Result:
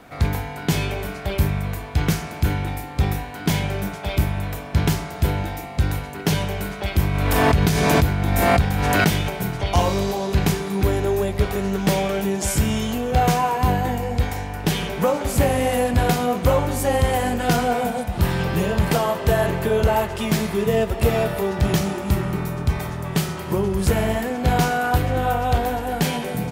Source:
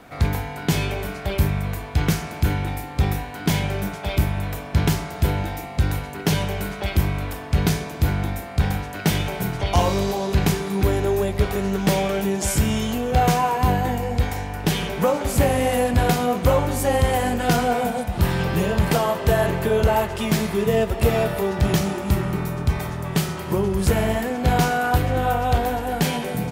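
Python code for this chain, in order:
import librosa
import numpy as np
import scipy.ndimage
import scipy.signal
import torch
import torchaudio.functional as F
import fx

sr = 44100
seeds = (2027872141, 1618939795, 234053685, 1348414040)

y = fx.pre_swell(x, sr, db_per_s=20.0, at=(6.98, 9.28), fade=0.02)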